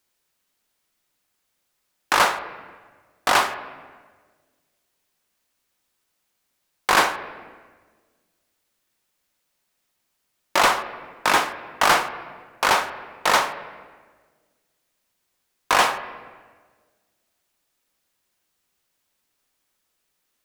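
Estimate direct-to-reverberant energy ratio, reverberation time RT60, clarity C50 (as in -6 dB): 9.5 dB, 1.5 s, 12.0 dB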